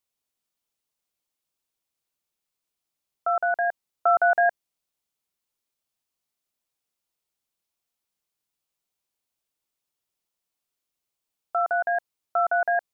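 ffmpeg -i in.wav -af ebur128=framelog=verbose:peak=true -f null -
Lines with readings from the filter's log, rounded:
Integrated loudness:
  I:         -24.3 LUFS
  Threshold: -34.3 LUFS
Loudness range:
  LRA:         8.1 LU
  Threshold: -48.3 LUFS
  LRA low:   -34.3 LUFS
  LRA high:  -26.1 LUFS
True peak:
  Peak:      -11.8 dBFS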